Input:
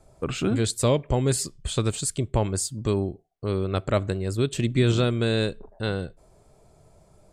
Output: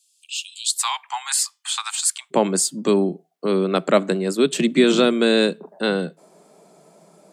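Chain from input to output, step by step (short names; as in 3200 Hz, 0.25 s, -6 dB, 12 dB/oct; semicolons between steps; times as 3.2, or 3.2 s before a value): steep high-pass 2700 Hz 96 dB/oct, from 0.77 s 790 Hz, from 2.3 s 160 Hz; gain +8 dB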